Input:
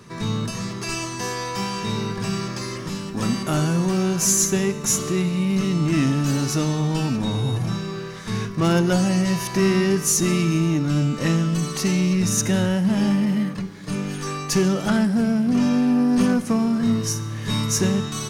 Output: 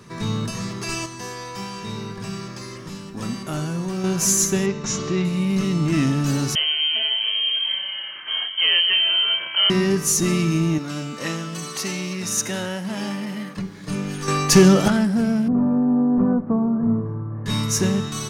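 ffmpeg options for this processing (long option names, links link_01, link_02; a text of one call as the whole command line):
ffmpeg -i in.wav -filter_complex "[0:a]asettb=1/sr,asplit=3[link_01][link_02][link_03];[link_01]atrim=end=4.664[link_04];[link_02]atrim=start=4.66:end=5.25,asetpts=PTS-STARTPTS,afade=type=in:duration=0.004:curve=qsin,afade=type=out:start_time=0.586:duration=0.004:curve=qsin,lowpass=frequency=5800:width=0.5412,lowpass=frequency=5800:width=1.3066[link_05];[link_03]atrim=start=5.246[link_06];[link_04][link_05]acrossfade=duration=0.004:curve1=hsin:curve2=qsin[link_07];[link_07][link_06]acrossfade=duration=0.004:curve1=qsin:curve2=hsin,asettb=1/sr,asplit=3[link_08][link_09][link_10];[link_08]atrim=end=6.554[link_11];[link_09]atrim=start=6.55:end=9.7,asetpts=PTS-STARTPTS,afade=type=in:duration=0.004:curve=qsin,afade=type=out:start_time=3.146:duration=0.004:curve=qsin,lowpass=frequency=2800:width_type=q:width=0.5098,lowpass=frequency=2800:width_type=q:width=0.6013,lowpass=frequency=2800:width_type=q:width=0.9,lowpass=frequency=2800:width_type=q:width=2.563,afreqshift=-3300[link_12];[link_10]atrim=start=9.696[link_13];[link_11][link_12]acrossfade=duration=0.004:curve1=hsin:curve2=qsin[link_14];[link_14][link_13]acrossfade=duration=0.004:curve1=qsin:curve2=hsin,asettb=1/sr,asplit=3[link_15][link_16][link_17];[link_15]atrim=end=10.784[link_18];[link_16]atrim=start=10.78:end=13.57,asetpts=PTS-STARTPTS,afade=type=in:duration=0.004:curve=qsin,afade=type=out:start_time=2.786:duration=0.004:curve=qsin,highpass=frequency=550:poles=1[link_19];[link_17]atrim=start=13.566[link_20];[link_18][link_19]acrossfade=duration=0.004:curve1=hsin:curve2=qsin[link_21];[link_21][link_20]acrossfade=duration=0.004:curve1=qsin:curve2=hsin,asettb=1/sr,asplit=3[link_22][link_23][link_24];[link_22]atrim=end=15.484[link_25];[link_23]atrim=start=15.48:end=17.46,asetpts=PTS-STARTPTS,afade=type=in:duration=0.004:curve=qsin,afade=type=out:start_time=1.976:duration=0.004:curve=qsin,lowpass=frequency=1100:width=0.5412,lowpass=frequency=1100:width=1.3066[link_26];[link_24]atrim=start=17.456[link_27];[link_25][link_26]acrossfade=duration=0.004:curve1=hsin:curve2=qsin[link_28];[link_28][link_27]acrossfade=duration=0.004:curve1=qsin:curve2=hsin,asplit=5[link_29][link_30][link_31][link_32][link_33];[link_29]atrim=end=1.062[link_34];[link_30]atrim=start=1.058:end=4.042,asetpts=PTS-STARTPTS,volume=-5.5dB[link_35];[link_31]atrim=start=4.038:end=14.282[link_36];[link_32]atrim=start=14.278:end=14.882,asetpts=PTS-STARTPTS,volume=7.5dB[link_37];[link_33]atrim=start=14.878[link_38];[link_34][link_35]acrossfade=duration=0.004:curve1=hsin:curve2=hsin[link_39];[link_39][link_36]acrossfade=duration=0.004:curve1=hsin:curve2=hsin[link_40];[link_40][link_37]acrossfade=duration=0.004:curve1=hsin:curve2=hsin[link_41];[link_41][link_38]acrossfade=duration=0.004:curve1=hsin:curve2=hsin" out.wav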